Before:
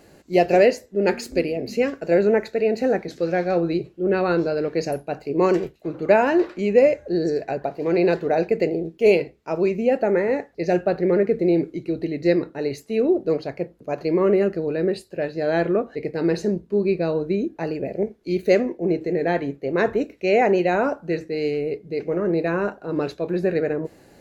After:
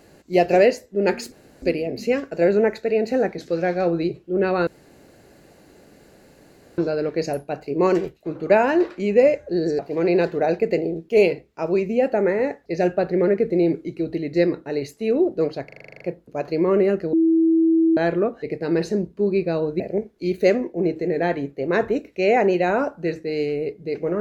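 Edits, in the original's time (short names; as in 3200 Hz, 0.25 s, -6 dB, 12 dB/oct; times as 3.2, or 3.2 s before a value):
1.32 insert room tone 0.30 s
4.37 insert room tone 2.11 s
7.38–7.68 cut
13.54 stutter 0.04 s, 10 plays
14.66–15.5 bleep 326 Hz -13.5 dBFS
17.33–17.85 cut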